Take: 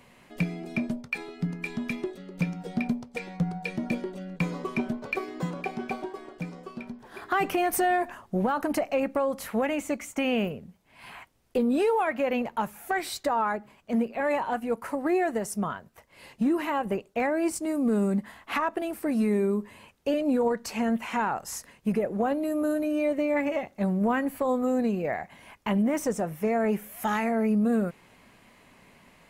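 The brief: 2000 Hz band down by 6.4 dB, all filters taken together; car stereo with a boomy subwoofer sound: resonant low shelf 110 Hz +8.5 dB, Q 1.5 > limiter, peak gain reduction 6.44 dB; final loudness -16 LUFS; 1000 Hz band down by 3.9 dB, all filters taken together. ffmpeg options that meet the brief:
-af "lowshelf=f=110:t=q:w=1.5:g=8.5,equalizer=f=1k:t=o:g=-4,equalizer=f=2k:t=o:g=-7,volume=16.5dB,alimiter=limit=-6.5dB:level=0:latency=1"

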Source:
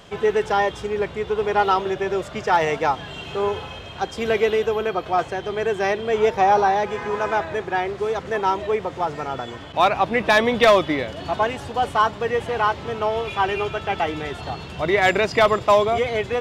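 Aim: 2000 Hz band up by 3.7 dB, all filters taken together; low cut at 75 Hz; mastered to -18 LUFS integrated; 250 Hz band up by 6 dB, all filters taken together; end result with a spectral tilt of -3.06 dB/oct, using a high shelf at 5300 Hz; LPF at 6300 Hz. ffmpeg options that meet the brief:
-af "highpass=75,lowpass=6.3k,equalizer=f=250:t=o:g=8,equalizer=f=2k:t=o:g=5,highshelf=f=5.3k:g=-4.5,volume=1.5dB"

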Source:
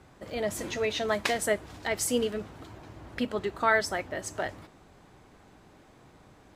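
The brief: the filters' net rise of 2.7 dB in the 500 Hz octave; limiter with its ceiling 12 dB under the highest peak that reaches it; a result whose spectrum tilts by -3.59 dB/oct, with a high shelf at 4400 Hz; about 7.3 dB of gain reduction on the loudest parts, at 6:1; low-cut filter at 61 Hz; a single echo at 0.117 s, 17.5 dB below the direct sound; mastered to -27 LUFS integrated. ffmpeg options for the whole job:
-af "highpass=61,equalizer=f=500:t=o:g=3.5,highshelf=f=4.4k:g=-6.5,acompressor=threshold=-26dB:ratio=6,alimiter=level_in=0.5dB:limit=-24dB:level=0:latency=1,volume=-0.5dB,aecho=1:1:117:0.133,volume=8.5dB"

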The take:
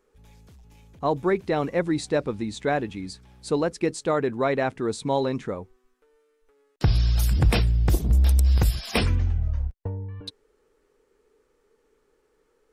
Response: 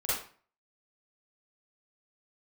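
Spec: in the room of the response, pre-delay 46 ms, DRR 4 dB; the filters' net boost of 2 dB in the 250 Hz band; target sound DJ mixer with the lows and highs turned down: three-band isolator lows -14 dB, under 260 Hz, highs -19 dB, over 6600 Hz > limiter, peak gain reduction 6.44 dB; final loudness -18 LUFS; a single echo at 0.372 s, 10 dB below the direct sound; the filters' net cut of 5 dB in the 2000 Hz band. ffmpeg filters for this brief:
-filter_complex "[0:a]equalizer=f=250:t=o:g=8,equalizer=f=2k:t=o:g=-6.5,aecho=1:1:372:0.316,asplit=2[a][b];[1:a]atrim=start_sample=2205,adelay=46[c];[b][c]afir=irnorm=-1:irlink=0,volume=-11.5dB[d];[a][d]amix=inputs=2:normalize=0,acrossover=split=260 6600:gain=0.2 1 0.112[e][f][g];[e][f][g]amix=inputs=3:normalize=0,volume=9dB,alimiter=limit=-6dB:level=0:latency=1"

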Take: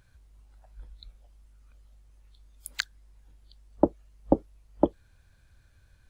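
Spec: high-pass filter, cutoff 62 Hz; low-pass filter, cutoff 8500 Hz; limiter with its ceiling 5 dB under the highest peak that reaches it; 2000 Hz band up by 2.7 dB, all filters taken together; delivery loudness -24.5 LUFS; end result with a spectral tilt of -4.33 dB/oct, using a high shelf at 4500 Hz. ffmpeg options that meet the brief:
-af "highpass=62,lowpass=8.5k,equalizer=f=2k:t=o:g=4,highshelf=f=4.5k:g=-3,volume=9dB,alimiter=limit=-0.5dB:level=0:latency=1"

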